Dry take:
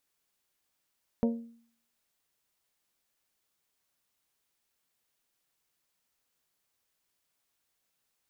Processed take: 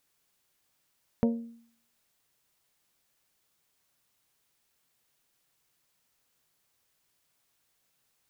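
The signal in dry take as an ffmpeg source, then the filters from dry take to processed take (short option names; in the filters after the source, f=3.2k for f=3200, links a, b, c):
-f lavfi -i "aevalsrc='0.0841*pow(10,-3*t/0.56)*sin(2*PI*232*t)+0.0447*pow(10,-3*t/0.345)*sin(2*PI*464*t)+0.0237*pow(10,-3*t/0.303)*sin(2*PI*556.8*t)+0.0126*pow(10,-3*t/0.26)*sin(2*PI*696*t)+0.00668*pow(10,-3*t/0.212)*sin(2*PI*928*t)':d=0.89:s=44100"
-filter_complex "[0:a]equalizer=f=130:t=o:w=0.64:g=5,asplit=2[a][b];[b]acompressor=threshold=-37dB:ratio=6,volume=-2dB[c];[a][c]amix=inputs=2:normalize=0"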